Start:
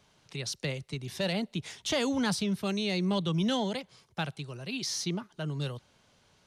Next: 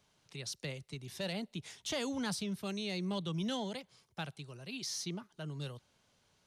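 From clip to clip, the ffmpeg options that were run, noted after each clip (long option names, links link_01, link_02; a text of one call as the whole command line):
ffmpeg -i in.wav -af "highshelf=frequency=6600:gain=5.5,volume=-8dB" out.wav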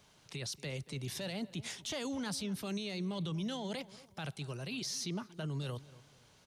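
ffmpeg -i in.wav -filter_complex "[0:a]alimiter=level_in=15dB:limit=-24dB:level=0:latency=1:release=24,volume=-15dB,asplit=2[link_01][link_02];[link_02]adelay=233,lowpass=frequency=2000:poles=1,volume=-18dB,asplit=2[link_03][link_04];[link_04]adelay=233,lowpass=frequency=2000:poles=1,volume=0.33,asplit=2[link_05][link_06];[link_06]adelay=233,lowpass=frequency=2000:poles=1,volume=0.33[link_07];[link_01][link_03][link_05][link_07]amix=inputs=4:normalize=0,volume=7.5dB" out.wav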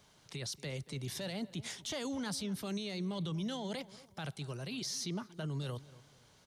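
ffmpeg -i in.wav -af "equalizer=frequency=2600:width=7.1:gain=-4.5" out.wav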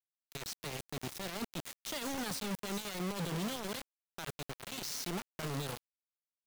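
ffmpeg -i in.wav -af "acrusher=bits=5:mix=0:aa=0.000001,volume=-2dB" out.wav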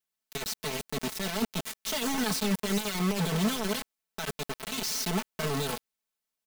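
ffmpeg -i in.wav -af "aecho=1:1:4.6:0.98,volume=5.5dB" out.wav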